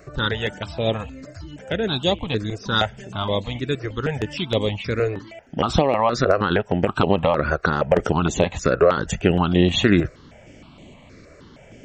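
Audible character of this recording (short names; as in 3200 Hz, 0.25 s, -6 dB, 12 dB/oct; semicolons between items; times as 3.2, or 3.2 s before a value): notches that jump at a steady rate 6.4 Hz 880–5100 Hz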